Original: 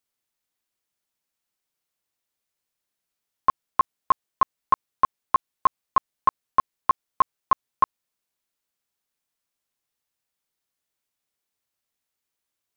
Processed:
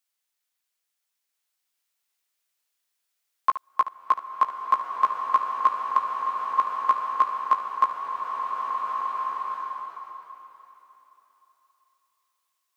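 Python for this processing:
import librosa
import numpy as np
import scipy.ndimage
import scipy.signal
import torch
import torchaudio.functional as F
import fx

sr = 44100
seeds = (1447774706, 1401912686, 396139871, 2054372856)

y = fx.level_steps(x, sr, step_db=14, at=(5.97, 6.59))
y = fx.highpass(y, sr, hz=1200.0, slope=6)
y = fx.room_early_taps(y, sr, ms=(17, 72), db=(-11.0, -13.5))
y = fx.rev_bloom(y, sr, seeds[0], attack_ms=1730, drr_db=0.5)
y = F.gain(torch.from_numpy(y), 2.0).numpy()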